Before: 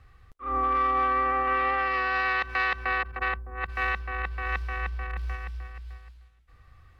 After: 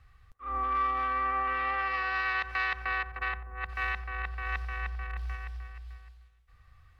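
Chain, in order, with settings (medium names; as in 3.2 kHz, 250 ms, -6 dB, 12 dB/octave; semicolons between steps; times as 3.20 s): peaking EQ 340 Hz -9 dB 1.9 oct; band-passed feedback delay 90 ms, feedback 60%, band-pass 540 Hz, level -11 dB; trim -3 dB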